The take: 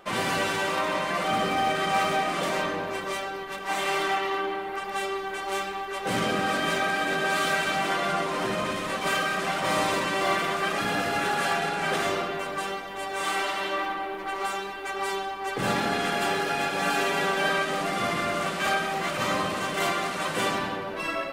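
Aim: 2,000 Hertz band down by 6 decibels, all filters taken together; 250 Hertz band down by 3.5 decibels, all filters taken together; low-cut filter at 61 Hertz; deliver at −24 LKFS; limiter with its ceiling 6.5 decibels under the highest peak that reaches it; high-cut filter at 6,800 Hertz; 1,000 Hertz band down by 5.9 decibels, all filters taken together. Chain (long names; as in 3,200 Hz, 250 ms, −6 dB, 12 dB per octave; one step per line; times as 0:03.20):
high-pass filter 61 Hz
low-pass filter 6,800 Hz
parametric band 250 Hz −4.5 dB
parametric band 1,000 Hz −6.5 dB
parametric band 2,000 Hz −5.5 dB
level +8.5 dB
brickwall limiter −14 dBFS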